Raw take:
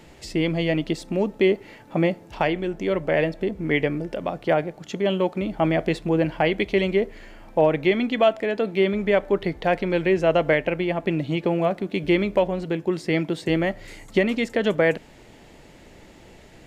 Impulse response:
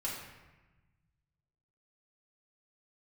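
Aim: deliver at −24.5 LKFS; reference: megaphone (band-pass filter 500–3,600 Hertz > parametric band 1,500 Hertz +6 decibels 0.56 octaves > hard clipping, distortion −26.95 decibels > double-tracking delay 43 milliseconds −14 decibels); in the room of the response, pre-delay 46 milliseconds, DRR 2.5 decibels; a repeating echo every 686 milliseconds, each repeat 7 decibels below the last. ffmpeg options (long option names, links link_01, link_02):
-filter_complex "[0:a]aecho=1:1:686|1372|2058|2744|3430:0.447|0.201|0.0905|0.0407|0.0183,asplit=2[link_01][link_02];[1:a]atrim=start_sample=2205,adelay=46[link_03];[link_02][link_03]afir=irnorm=-1:irlink=0,volume=-5.5dB[link_04];[link_01][link_04]amix=inputs=2:normalize=0,highpass=500,lowpass=3600,equalizer=frequency=1500:width_type=o:width=0.56:gain=6,asoftclip=type=hard:threshold=-10.5dB,asplit=2[link_05][link_06];[link_06]adelay=43,volume=-14dB[link_07];[link_05][link_07]amix=inputs=2:normalize=0,volume=-0.5dB"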